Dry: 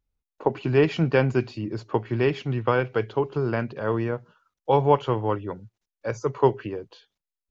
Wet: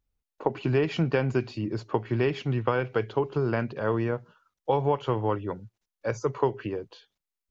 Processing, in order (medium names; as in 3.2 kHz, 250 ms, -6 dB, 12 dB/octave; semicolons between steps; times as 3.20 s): compression 6:1, threshold -20 dBFS, peak gain reduction 8 dB